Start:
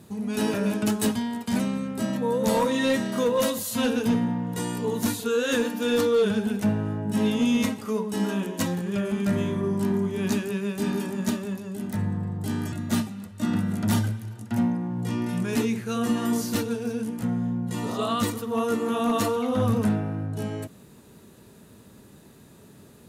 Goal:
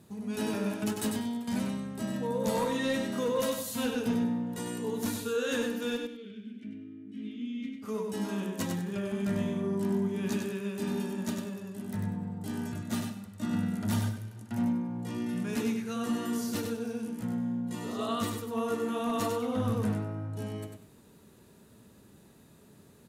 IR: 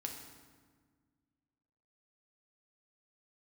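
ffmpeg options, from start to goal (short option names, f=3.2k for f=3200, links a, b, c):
-filter_complex "[0:a]asplit=3[a][b][c];[a]afade=t=out:st=5.96:d=0.02[d];[b]asplit=3[e][f][g];[e]bandpass=f=270:t=q:w=8,volume=0dB[h];[f]bandpass=f=2.29k:t=q:w=8,volume=-6dB[i];[g]bandpass=f=3.01k:t=q:w=8,volume=-9dB[j];[h][i][j]amix=inputs=3:normalize=0,afade=t=in:st=5.96:d=0.02,afade=t=out:st=7.82:d=0.02[k];[c]afade=t=in:st=7.82:d=0.02[l];[d][k][l]amix=inputs=3:normalize=0,asplit=2[m][n];[n]aecho=0:1:97|194|291:0.531|0.127|0.0306[o];[m][o]amix=inputs=2:normalize=0,volume=-7.5dB"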